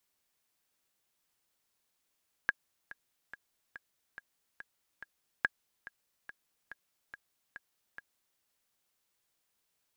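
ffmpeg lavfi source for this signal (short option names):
-f lavfi -i "aevalsrc='pow(10,(-13.5-18.5*gte(mod(t,7*60/142),60/142))/20)*sin(2*PI*1640*mod(t,60/142))*exp(-6.91*mod(t,60/142)/0.03)':d=5.91:s=44100"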